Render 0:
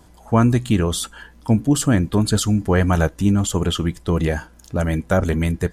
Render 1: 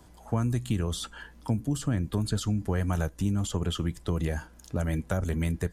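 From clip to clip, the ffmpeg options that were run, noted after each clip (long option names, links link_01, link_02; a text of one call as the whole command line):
ffmpeg -i in.wav -filter_complex "[0:a]acrossover=split=140|6300[link_01][link_02][link_03];[link_01]acompressor=threshold=-23dB:ratio=4[link_04];[link_02]acompressor=threshold=-26dB:ratio=4[link_05];[link_03]acompressor=threshold=-40dB:ratio=4[link_06];[link_04][link_05][link_06]amix=inputs=3:normalize=0,volume=-4.5dB" out.wav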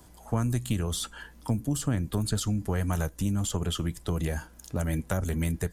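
ffmpeg -i in.wav -af "highshelf=frequency=8100:gain=10,aeval=exprs='0.178*(cos(1*acos(clip(val(0)/0.178,-1,1)))-cos(1*PI/2))+0.0251*(cos(2*acos(clip(val(0)/0.178,-1,1)))-cos(2*PI/2))':channel_layout=same" out.wav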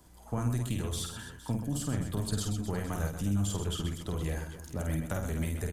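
ffmpeg -i in.wav -af "aecho=1:1:50|130|258|462.8|790.5:0.631|0.398|0.251|0.158|0.1,volume=-6dB" out.wav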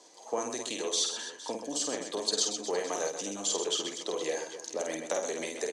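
ffmpeg -i in.wav -af "highpass=frequency=360:width=0.5412,highpass=frequency=360:width=1.3066,equalizer=frequency=490:width_type=q:width=4:gain=5,equalizer=frequency=1400:width_type=q:width=4:gain=-10,equalizer=frequency=4200:width_type=q:width=4:gain=7,equalizer=frequency=6100:width_type=q:width=4:gain=10,lowpass=frequency=7800:width=0.5412,lowpass=frequency=7800:width=1.3066,volume=6dB" out.wav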